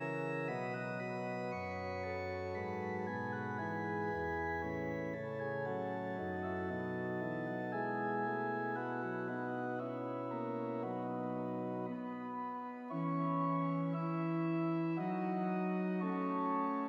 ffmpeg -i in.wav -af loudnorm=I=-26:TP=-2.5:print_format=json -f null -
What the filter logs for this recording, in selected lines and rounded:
"input_i" : "-38.6",
"input_tp" : "-25.4",
"input_lra" : "3.6",
"input_thresh" : "-48.6",